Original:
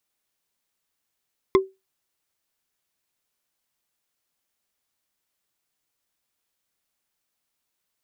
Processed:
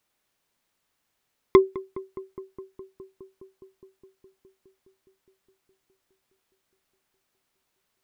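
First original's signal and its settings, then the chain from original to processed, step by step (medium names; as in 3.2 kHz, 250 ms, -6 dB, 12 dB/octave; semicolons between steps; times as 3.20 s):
wood hit bar, lowest mode 383 Hz, decay 0.22 s, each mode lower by 5 dB, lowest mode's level -9.5 dB
treble shelf 3.8 kHz -7.5 dB; in parallel at +2.5 dB: peak limiter -15 dBFS; on the sum: filtered feedback delay 207 ms, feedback 83%, low-pass 1.8 kHz, level -18.5 dB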